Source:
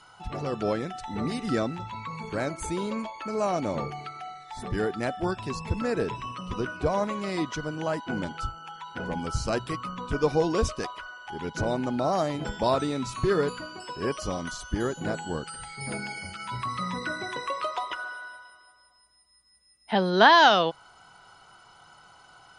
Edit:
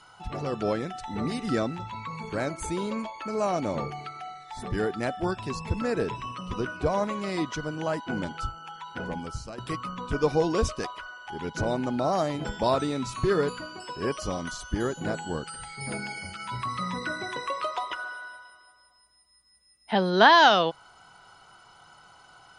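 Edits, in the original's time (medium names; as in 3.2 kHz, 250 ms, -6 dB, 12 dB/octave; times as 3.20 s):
8.99–9.58 s: fade out, to -17.5 dB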